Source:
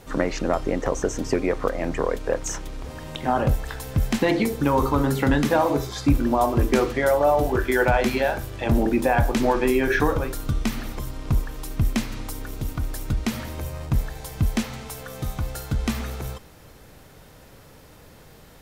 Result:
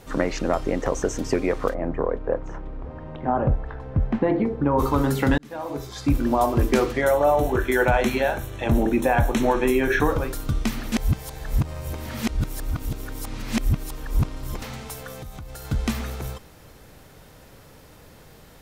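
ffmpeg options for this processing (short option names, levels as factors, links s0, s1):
-filter_complex "[0:a]asplit=3[s0][s1][s2];[s0]afade=t=out:st=1.73:d=0.02[s3];[s1]lowpass=1200,afade=t=in:st=1.73:d=0.02,afade=t=out:st=4.78:d=0.02[s4];[s2]afade=t=in:st=4.78:d=0.02[s5];[s3][s4][s5]amix=inputs=3:normalize=0,asettb=1/sr,asplit=3[s6][s7][s8];[s6]atrim=end=7.014[s9];[s7]atrim=start=7.01:end=10.11,asetpts=PTS-STARTPTS,afade=t=in:d=0.004:c=qsin,afade=t=out:st=3.096:d=0.004:c=qsin,asuperstop=centerf=4800:order=4:qfactor=4.5[s10];[s8]atrim=start=10.106[s11];[s9][s10]acrossfade=d=0.004:c1=hsin:c2=qsin[s12];[s12][s11]acrossfade=d=0.004:c1=qsin:c2=hsin,asettb=1/sr,asplit=3[s13][s14][s15];[s13]atrim=end=15.124[s16];[s14]atrim=start=15.12:end=15.65,asetpts=PTS-STARTPTS,afade=t=in:d=0.004:c=qsin,afade=t=out:st=0.526:d=0.004:c=qsin,acompressor=threshold=0.0224:ratio=10:attack=3.2:release=140:knee=1:detection=peak[s17];[s15]atrim=start=15.646[s18];[s16][s17]acrossfade=d=0.004:c1=hsin:c2=qsin[s19];[s19][s18]acrossfade=d=0.004:c1=qsin:c2=hsin,asplit=4[s20][s21][s22][s23];[s20]atrim=end=5.38,asetpts=PTS-STARTPTS,afade=t=out:st=5.376:d=0.004:c=hsin[s24];[s21]atrim=start=5.38:end=10.922,asetpts=PTS-STARTPTS,afade=t=in:d=0.92[s25];[s22]atrim=start=10.918:end=14.622,asetpts=PTS-STARTPTS,areverse[s26];[s23]atrim=start=14.618[s27];[s24][s25]concat=n=2:v=0:a=1[s28];[s28][s26]acrossfade=d=0.004:c1=hsin:c2=hsin[s29];[s29][s27]acrossfade=d=0.004:c1=hsin:c2=hsin"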